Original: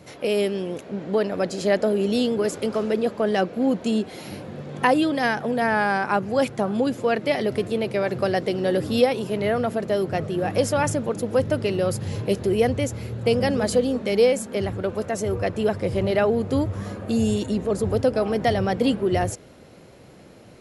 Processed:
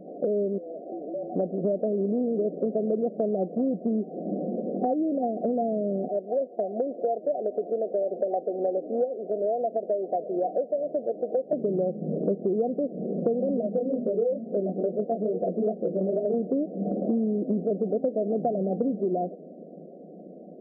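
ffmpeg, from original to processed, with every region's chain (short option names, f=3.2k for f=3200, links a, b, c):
-filter_complex "[0:a]asettb=1/sr,asplit=3[a][b][c];[a]atrim=end=0.584[d];[b]atrim=start=0.58:end=1.36,asetpts=PTS-STARTPTS,afade=t=in:d=0.004:c=qsin,afade=t=out:st=0.776:d=0.004:c=qsin,acompressor=threshold=-34dB:ratio=2.5:attack=3.2:release=140:knee=1:detection=peak,aeval=exprs='clip(val(0),-1,0.00501)':c=same,afreqshift=140[e];[c]atrim=start=1.356[f];[d][e]acrossfade=d=0.004:c1=hsin:c2=qsin[g];[g][f]acrossfade=d=0.004:c1=qsin:c2=hsin,asettb=1/sr,asplit=3[h][i][j];[h]atrim=end=6.084[k];[i]atrim=start=6.08:end=11.53,asetpts=PTS-STARTPTS,afade=t=in:d=0.004:c=qsin,afade=t=out:st=5.446:d=0.004:c=qsin,highpass=650,acrusher=bits=3:mode=log:mix=0:aa=0.000001[l];[j]atrim=start=11.526[m];[k][l]acrossfade=d=0.004:c1=hsin:c2=qsin[n];[n][m]acrossfade=d=0.004:c1=qsin:c2=hsin,asettb=1/sr,asplit=3[o][p][q];[o]atrim=end=13.614[r];[p]atrim=start=13.61:end=16.34,asetpts=PTS-STARTPTS,afade=t=in:d=0.004:c=qsin,afade=t=out:st=2.726:d=0.004:c=qsin,aeval=exprs='clip(val(0),-1,0.15)':c=same,bandreject=f=50:t=h:w=6,bandreject=f=100:t=h:w=6,bandreject=f=150:t=h:w=6,bandreject=f=200:t=h:w=6,bandreject=f=250:t=h:w=6,bandreject=f=300:t=h:w=6,bandreject=f=350:t=h:w=6,flanger=delay=17:depth=4.9:speed=2.3[s];[q]atrim=start=16.336[t];[r][s]acrossfade=d=0.004:c1=hsin:c2=qsin[u];[u][t]acrossfade=d=0.004:c1=qsin:c2=hsin,dynaudnorm=f=130:g=31:m=6dB,afftfilt=real='re*between(b*sr/4096,160,760)':imag='im*between(b*sr/4096,160,760)':win_size=4096:overlap=0.75,acompressor=threshold=-29dB:ratio=6,volume=5dB"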